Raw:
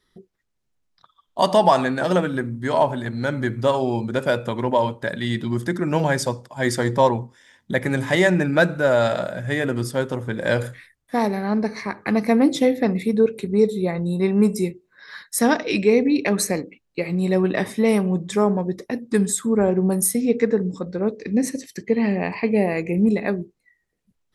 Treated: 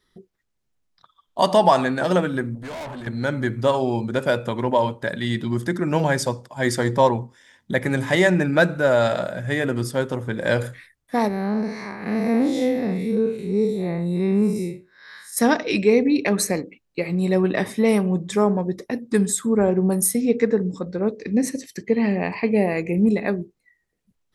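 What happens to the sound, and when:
0:02.55–0:03.07: tube saturation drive 31 dB, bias 0.5
0:11.28–0:15.37: spectrum smeared in time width 142 ms

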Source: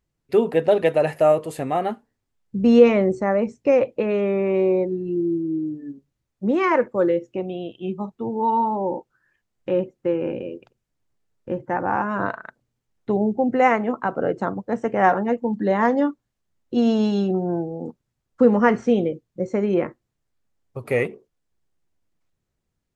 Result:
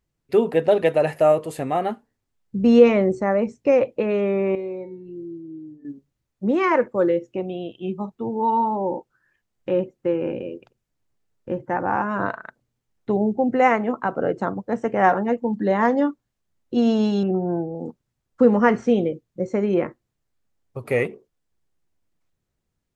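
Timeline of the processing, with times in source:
0:04.55–0:05.85: tuned comb filter 130 Hz, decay 0.46 s, mix 80%
0:17.23–0:17.75: Butterworth low-pass 2,700 Hz 48 dB per octave

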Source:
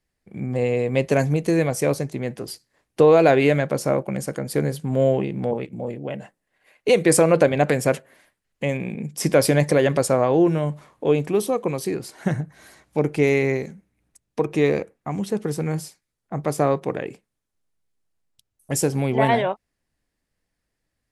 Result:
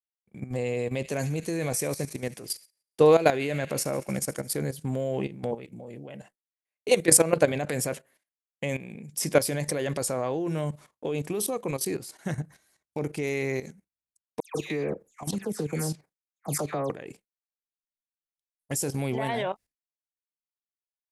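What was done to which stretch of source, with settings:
0:00.78–0:04.57: delay with a high-pass on its return 72 ms, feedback 76%, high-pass 2,000 Hz, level −15 dB
0:14.40–0:16.90: all-pass dispersion lows, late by 149 ms, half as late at 2,300 Hz
whole clip: downward expander −38 dBFS; high-shelf EQ 4,300 Hz +11.5 dB; output level in coarse steps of 13 dB; level −2.5 dB

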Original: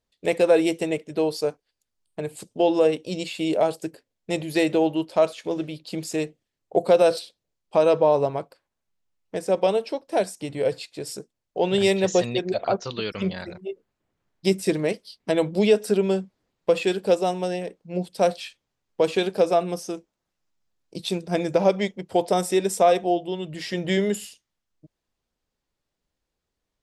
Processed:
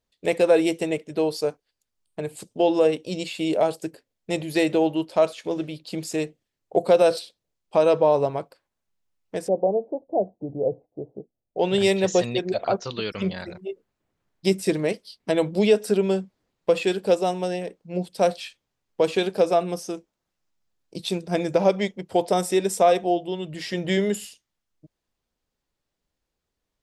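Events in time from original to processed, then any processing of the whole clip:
0:09.48–0:11.59: elliptic low-pass filter 750 Hz, stop band 80 dB

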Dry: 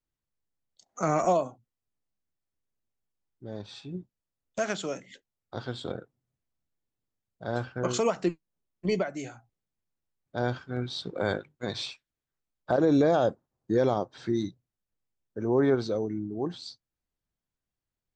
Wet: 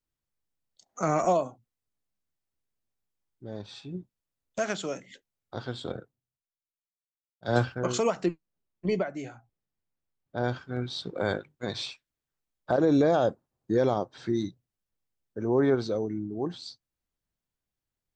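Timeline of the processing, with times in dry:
0:05.93–0:07.75: multiband upward and downward expander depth 100%
0:08.26–0:10.44: high-shelf EQ 4,900 Hz −11.5 dB

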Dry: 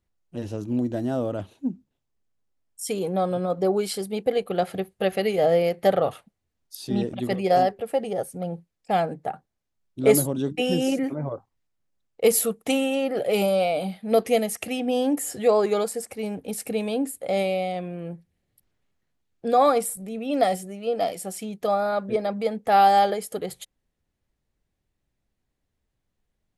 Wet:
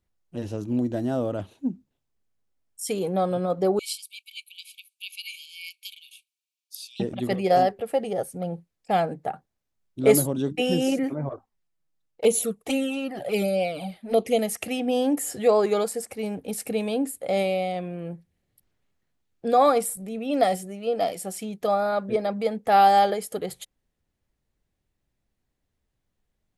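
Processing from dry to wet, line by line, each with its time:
0:03.79–0:07.00: linear-phase brick-wall high-pass 2,200 Hz
0:11.29–0:14.39: flanger swept by the level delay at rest 6.5 ms, full sweep at −17 dBFS

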